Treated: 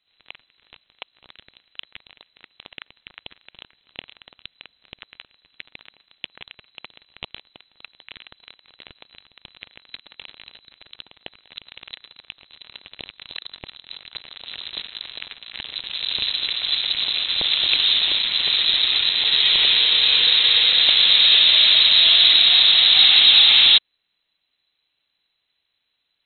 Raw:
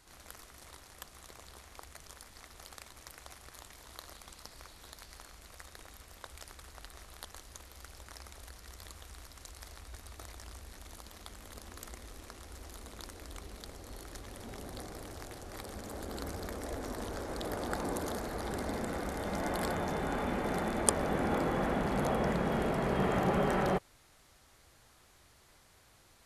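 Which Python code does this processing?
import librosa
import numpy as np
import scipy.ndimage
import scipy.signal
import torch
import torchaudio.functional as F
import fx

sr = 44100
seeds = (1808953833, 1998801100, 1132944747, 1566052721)

y = fx.leveller(x, sr, passes=5)
y = fx.air_absorb(y, sr, metres=190.0)
y = fx.freq_invert(y, sr, carrier_hz=4000)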